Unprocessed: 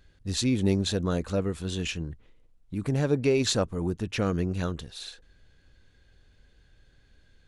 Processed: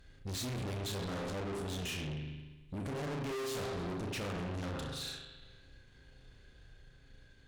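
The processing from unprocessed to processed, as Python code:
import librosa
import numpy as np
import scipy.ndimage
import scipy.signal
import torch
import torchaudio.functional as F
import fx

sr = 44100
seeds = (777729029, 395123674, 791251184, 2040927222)

y = fx.room_flutter(x, sr, wall_m=5.6, rt60_s=0.32)
y = fx.rev_spring(y, sr, rt60_s=1.2, pass_ms=(40,), chirp_ms=45, drr_db=3.0)
y = fx.tube_stage(y, sr, drive_db=38.0, bias=0.4)
y = y * librosa.db_to_amplitude(1.0)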